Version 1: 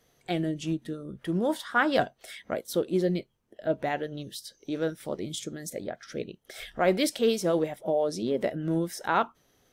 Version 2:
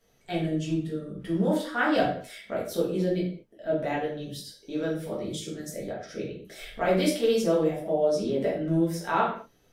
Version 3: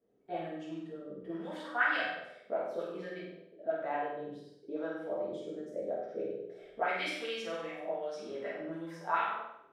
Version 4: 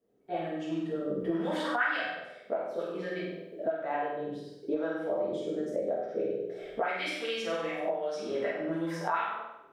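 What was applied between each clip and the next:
reverberation, pre-delay 4 ms, DRR -6.5 dB; trim -7 dB
auto-wah 330–2100 Hz, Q 2.1, up, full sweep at -20.5 dBFS; on a send: flutter echo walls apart 8.3 m, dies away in 0.7 s
recorder AGC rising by 12 dB/s

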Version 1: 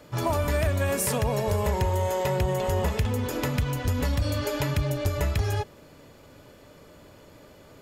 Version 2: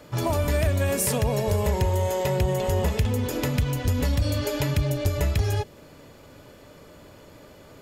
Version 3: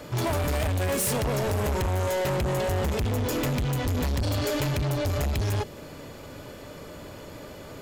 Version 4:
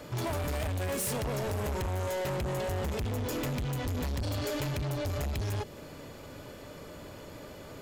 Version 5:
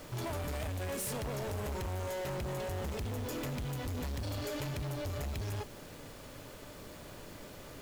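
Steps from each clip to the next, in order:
dynamic bell 1.2 kHz, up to -5 dB, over -43 dBFS, Q 1; trim +2.5 dB
saturation -30.5 dBFS, distortion -7 dB; trim +6.5 dB
compression 2:1, threshold -29 dBFS, peak gain reduction 2.5 dB; trim -4 dB
added noise pink -48 dBFS; trim -5 dB

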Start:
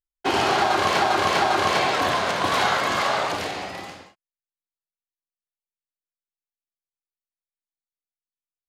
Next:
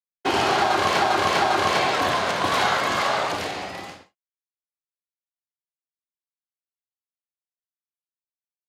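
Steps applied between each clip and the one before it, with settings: expander -37 dBFS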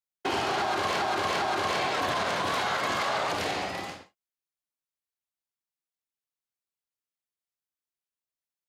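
peak limiter -19.5 dBFS, peak gain reduction 10.5 dB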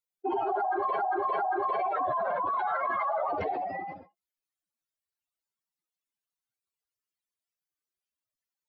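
spectral contrast enhancement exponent 3.5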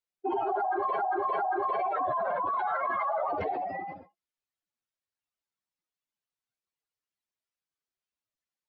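distance through air 66 m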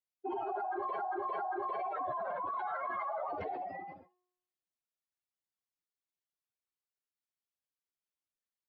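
feedback comb 360 Hz, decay 0.87 s, mix 60%

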